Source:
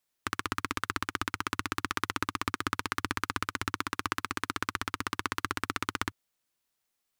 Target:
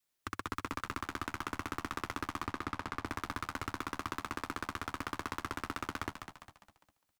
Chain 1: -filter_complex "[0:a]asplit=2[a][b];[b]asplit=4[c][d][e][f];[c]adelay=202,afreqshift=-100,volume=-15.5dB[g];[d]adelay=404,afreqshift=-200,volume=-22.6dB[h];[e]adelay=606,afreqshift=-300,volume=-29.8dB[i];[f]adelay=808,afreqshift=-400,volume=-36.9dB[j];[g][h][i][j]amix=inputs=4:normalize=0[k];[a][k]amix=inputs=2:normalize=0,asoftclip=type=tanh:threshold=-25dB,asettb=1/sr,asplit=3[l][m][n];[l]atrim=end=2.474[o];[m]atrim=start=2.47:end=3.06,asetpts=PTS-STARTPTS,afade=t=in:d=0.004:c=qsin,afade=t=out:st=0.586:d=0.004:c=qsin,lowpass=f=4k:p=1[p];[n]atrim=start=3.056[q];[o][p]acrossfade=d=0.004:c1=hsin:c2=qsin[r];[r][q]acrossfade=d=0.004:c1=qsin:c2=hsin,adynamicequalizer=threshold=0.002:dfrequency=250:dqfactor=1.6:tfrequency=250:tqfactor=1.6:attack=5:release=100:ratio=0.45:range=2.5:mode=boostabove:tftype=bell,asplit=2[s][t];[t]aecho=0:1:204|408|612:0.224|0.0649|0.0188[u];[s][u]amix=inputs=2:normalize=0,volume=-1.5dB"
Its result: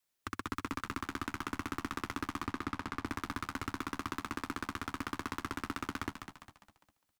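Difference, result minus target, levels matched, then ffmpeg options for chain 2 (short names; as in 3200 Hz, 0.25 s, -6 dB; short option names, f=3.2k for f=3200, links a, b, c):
250 Hz band +3.0 dB
-filter_complex "[0:a]asplit=2[a][b];[b]asplit=4[c][d][e][f];[c]adelay=202,afreqshift=-100,volume=-15.5dB[g];[d]adelay=404,afreqshift=-200,volume=-22.6dB[h];[e]adelay=606,afreqshift=-300,volume=-29.8dB[i];[f]adelay=808,afreqshift=-400,volume=-36.9dB[j];[g][h][i][j]amix=inputs=4:normalize=0[k];[a][k]amix=inputs=2:normalize=0,asoftclip=type=tanh:threshold=-25dB,asettb=1/sr,asplit=3[l][m][n];[l]atrim=end=2.474[o];[m]atrim=start=2.47:end=3.06,asetpts=PTS-STARTPTS,afade=t=in:d=0.004:c=qsin,afade=t=out:st=0.586:d=0.004:c=qsin,lowpass=f=4k:p=1[p];[n]atrim=start=3.056[q];[o][p]acrossfade=d=0.004:c1=hsin:c2=qsin[r];[r][q]acrossfade=d=0.004:c1=qsin:c2=hsin,adynamicequalizer=threshold=0.002:dfrequency=600:dqfactor=1.6:tfrequency=600:tqfactor=1.6:attack=5:release=100:ratio=0.45:range=2.5:mode=boostabove:tftype=bell,asplit=2[s][t];[t]aecho=0:1:204|408|612:0.224|0.0649|0.0188[u];[s][u]amix=inputs=2:normalize=0,volume=-1.5dB"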